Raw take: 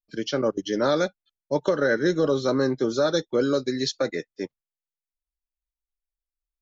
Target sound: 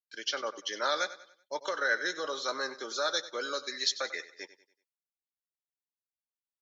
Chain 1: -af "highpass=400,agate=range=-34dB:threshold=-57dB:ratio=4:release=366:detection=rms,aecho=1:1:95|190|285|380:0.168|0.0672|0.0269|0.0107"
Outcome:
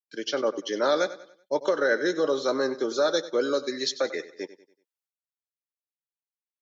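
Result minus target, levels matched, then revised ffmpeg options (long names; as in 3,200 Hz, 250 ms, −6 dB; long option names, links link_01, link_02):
500 Hz band +6.0 dB
-af "highpass=1100,agate=range=-34dB:threshold=-57dB:ratio=4:release=366:detection=rms,aecho=1:1:95|190|285|380:0.168|0.0672|0.0269|0.0107"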